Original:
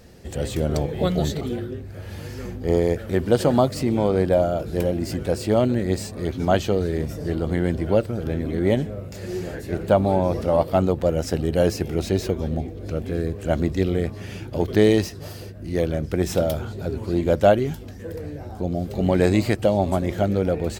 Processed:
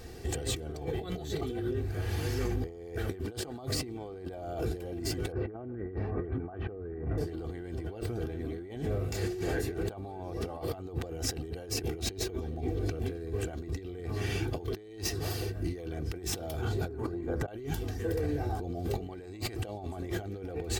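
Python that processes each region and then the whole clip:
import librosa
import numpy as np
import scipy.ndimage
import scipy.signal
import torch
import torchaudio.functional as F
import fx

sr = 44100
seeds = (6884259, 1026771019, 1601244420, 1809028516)

y = fx.chain(x, sr, fx.lowpass(hz=1700.0, slope=24),
    fx.doppler_dist(depth_ms=0.13), at=(5.32, 7.18))
y = fx.chain(y, sr, fx.high_shelf_res(hz=2100.0, db=-8.5, q=1.5),
    fx.over_compress(threshold_db=-26.0, ratio=-1.0),
    fx.hum_notches(base_hz=50, count=9), at=(16.88, 17.48))
y = fx.notch(y, sr, hz=560.0, q=12.0)
y = y + 0.56 * np.pad(y, (int(2.6 * sr / 1000.0), 0))[:len(y)]
y = fx.over_compress(y, sr, threshold_db=-31.0, ratio=-1.0)
y = F.gain(torch.from_numpy(y), -5.5).numpy()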